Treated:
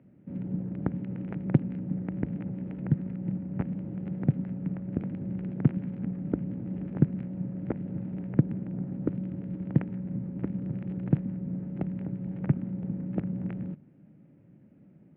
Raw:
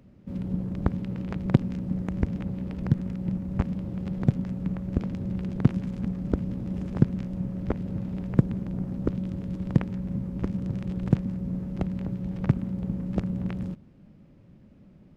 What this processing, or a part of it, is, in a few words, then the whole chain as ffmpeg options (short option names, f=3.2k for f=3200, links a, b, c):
bass cabinet: -af "highpass=f=81:w=0.5412,highpass=f=81:w=1.3066,equalizer=f=83:t=q:w=4:g=-9,equalizer=f=150:t=q:w=4:g=4,equalizer=f=300:t=q:w=4:g=5,equalizer=f=1.1k:t=q:w=4:g=-7,lowpass=f=2.4k:w=0.5412,lowpass=f=2.4k:w=1.3066,volume=-4dB"